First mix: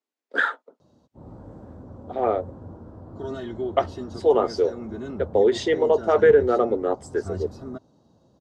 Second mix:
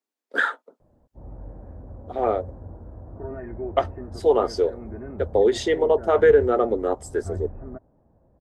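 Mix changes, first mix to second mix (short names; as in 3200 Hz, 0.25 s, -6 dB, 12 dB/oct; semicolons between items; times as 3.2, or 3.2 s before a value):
background: add rippled Chebyshev low-pass 2500 Hz, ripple 6 dB; master: remove BPF 140–6600 Hz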